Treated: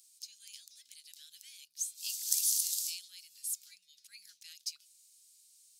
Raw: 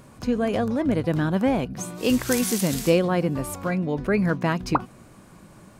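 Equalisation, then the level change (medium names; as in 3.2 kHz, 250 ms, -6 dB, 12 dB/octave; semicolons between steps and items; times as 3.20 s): inverse Chebyshev high-pass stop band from 1 kHz, stop band 70 dB; 0.0 dB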